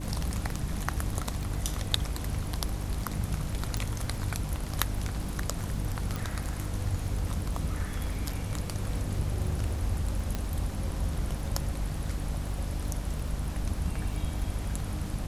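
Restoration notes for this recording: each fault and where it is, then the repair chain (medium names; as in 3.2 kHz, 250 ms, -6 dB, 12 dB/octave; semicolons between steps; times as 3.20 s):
crackle 22 per s -36 dBFS
hum 50 Hz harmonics 6 -36 dBFS
3.77 s: pop
6.16 s: pop
10.35 s: pop -17 dBFS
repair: de-click; de-hum 50 Hz, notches 6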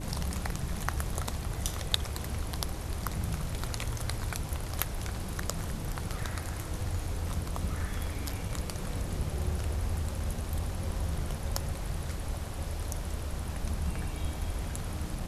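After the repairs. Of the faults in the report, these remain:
nothing left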